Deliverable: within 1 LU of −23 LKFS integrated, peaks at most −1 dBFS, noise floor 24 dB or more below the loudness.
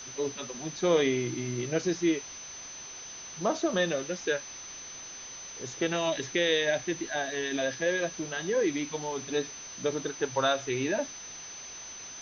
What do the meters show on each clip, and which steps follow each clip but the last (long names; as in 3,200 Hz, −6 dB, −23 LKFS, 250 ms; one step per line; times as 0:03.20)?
interfering tone 6,100 Hz; level of the tone −42 dBFS; background noise floor −44 dBFS; target noise floor −55 dBFS; integrated loudness −31.0 LKFS; sample peak −13.0 dBFS; target loudness −23.0 LKFS
→ notch filter 6,100 Hz, Q 30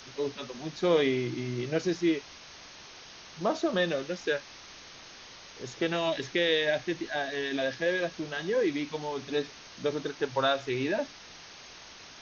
interfering tone none found; background noise floor −49 dBFS; target noise floor −54 dBFS
→ broadband denoise 6 dB, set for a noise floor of −49 dBFS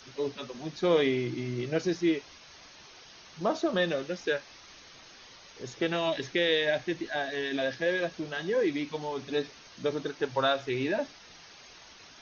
background noise floor −52 dBFS; target noise floor −55 dBFS
→ broadband denoise 6 dB, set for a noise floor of −52 dBFS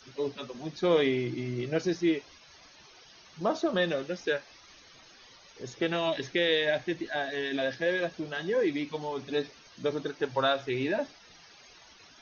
background noise floor −56 dBFS; integrated loudness −30.5 LKFS; sample peak −13.0 dBFS; target loudness −23.0 LKFS
→ level +7.5 dB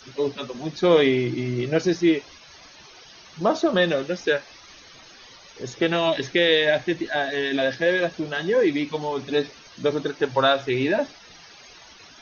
integrated loudness −23.0 LKFS; sample peak −5.5 dBFS; background noise floor −48 dBFS